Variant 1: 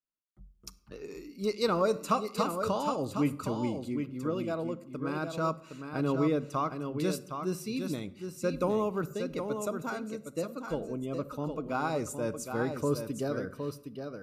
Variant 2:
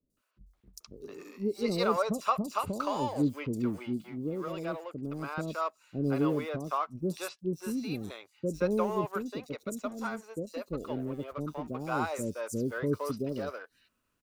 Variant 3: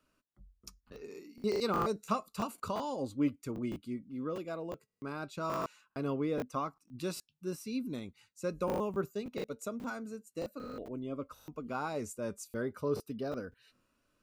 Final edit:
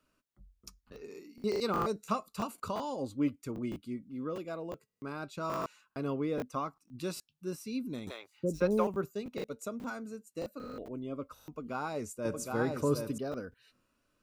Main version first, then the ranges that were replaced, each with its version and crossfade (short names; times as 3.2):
3
8.07–8.87 from 2
12.25–13.18 from 1